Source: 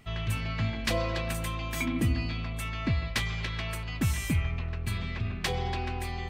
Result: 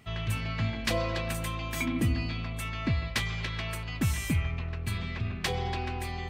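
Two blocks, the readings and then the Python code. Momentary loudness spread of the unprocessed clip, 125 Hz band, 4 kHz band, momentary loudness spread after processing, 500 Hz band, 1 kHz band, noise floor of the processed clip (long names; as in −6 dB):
5 LU, −0.5 dB, 0.0 dB, 6 LU, 0.0 dB, 0.0 dB, −36 dBFS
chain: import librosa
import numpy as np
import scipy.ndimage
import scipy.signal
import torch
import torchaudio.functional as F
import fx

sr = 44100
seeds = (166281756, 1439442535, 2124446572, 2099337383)

y = scipy.signal.sosfilt(scipy.signal.butter(2, 48.0, 'highpass', fs=sr, output='sos'), x)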